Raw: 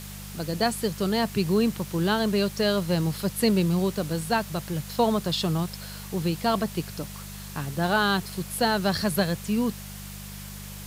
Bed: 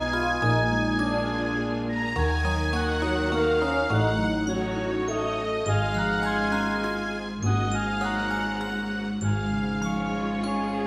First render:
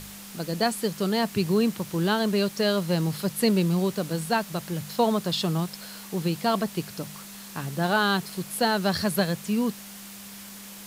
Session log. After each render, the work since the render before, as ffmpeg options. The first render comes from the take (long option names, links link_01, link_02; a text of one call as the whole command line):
ffmpeg -i in.wav -af "bandreject=frequency=50:width_type=h:width=4,bandreject=frequency=100:width_type=h:width=4,bandreject=frequency=150:width_type=h:width=4" out.wav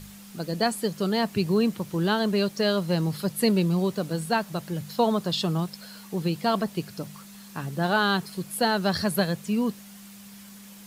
ffmpeg -i in.wav -af "afftdn=noise_reduction=7:noise_floor=-43" out.wav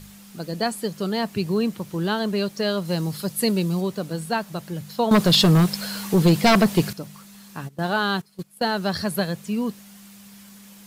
ffmpeg -i in.wav -filter_complex "[0:a]asettb=1/sr,asplit=3[link_01][link_02][link_03];[link_01]atrim=end=2.854[link_04];[link_02]atrim=start=2.85:end=3.81,asetpts=PTS-STARTPTS,afade=type=in:duration=0.004:curve=qsin,afade=type=out:start_time=0.956:duration=0.004:curve=qsin,bass=frequency=250:gain=0,treble=frequency=4000:gain=5[link_05];[link_03]atrim=start=3.806[link_06];[link_04][link_05]acrossfade=duration=0.004:curve1=hsin:curve2=qsin[link_07];[link_07][link_06]acrossfade=duration=0.004:curve1=qsin:curve2=hsin,asettb=1/sr,asplit=3[link_08][link_09][link_10];[link_08]atrim=end=5.114[link_11];[link_09]atrim=start=5.11:end=6.93,asetpts=PTS-STARTPTS,afade=type=in:duration=0.004:curve=qsin,afade=type=out:start_time=1.816:duration=0.004:curve=qsin,aeval=exprs='0.316*sin(PI/2*2.82*val(0)/0.316)':channel_layout=same[link_12];[link_10]atrim=start=6.926[link_13];[link_11][link_12]acrossfade=duration=0.004:curve1=hsin:curve2=qsin[link_14];[link_14][link_13]acrossfade=duration=0.004:curve1=qsin:curve2=hsin,asplit=3[link_15][link_16][link_17];[link_15]afade=type=out:start_time=7.67:duration=0.02[link_18];[link_16]agate=range=-17dB:threshold=-30dB:ratio=16:release=100:detection=peak,afade=type=in:start_time=7.67:duration=0.02,afade=type=out:start_time=8.77:duration=0.02[link_19];[link_17]afade=type=in:start_time=8.77:duration=0.02[link_20];[link_18][link_19][link_20]amix=inputs=3:normalize=0" out.wav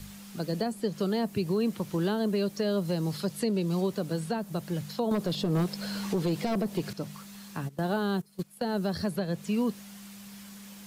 ffmpeg -i in.wav -filter_complex "[0:a]acrossover=split=290|580|7300[link_01][link_02][link_03][link_04];[link_01]acompressor=threshold=-30dB:ratio=4[link_05];[link_02]acompressor=threshold=-25dB:ratio=4[link_06];[link_03]acompressor=threshold=-38dB:ratio=4[link_07];[link_04]acompressor=threshold=-53dB:ratio=4[link_08];[link_05][link_06][link_07][link_08]amix=inputs=4:normalize=0,alimiter=limit=-19dB:level=0:latency=1:release=140" out.wav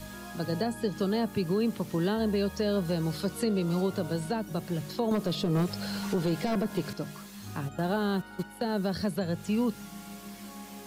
ffmpeg -i in.wav -i bed.wav -filter_complex "[1:a]volume=-20dB[link_01];[0:a][link_01]amix=inputs=2:normalize=0" out.wav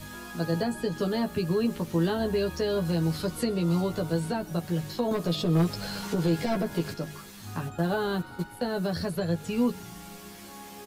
ffmpeg -i in.wav -filter_complex "[0:a]asplit=2[link_01][link_02];[link_02]adelay=12,volume=-3.5dB[link_03];[link_01][link_03]amix=inputs=2:normalize=0,asplit=6[link_04][link_05][link_06][link_07][link_08][link_09];[link_05]adelay=126,afreqshift=-62,volume=-22.5dB[link_10];[link_06]adelay=252,afreqshift=-124,volume=-26.8dB[link_11];[link_07]adelay=378,afreqshift=-186,volume=-31.1dB[link_12];[link_08]adelay=504,afreqshift=-248,volume=-35.4dB[link_13];[link_09]adelay=630,afreqshift=-310,volume=-39.7dB[link_14];[link_04][link_10][link_11][link_12][link_13][link_14]amix=inputs=6:normalize=0" out.wav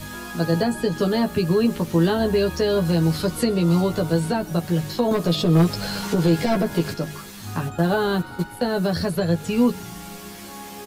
ffmpeg -i in.wav -af "volume=7dB" out.wav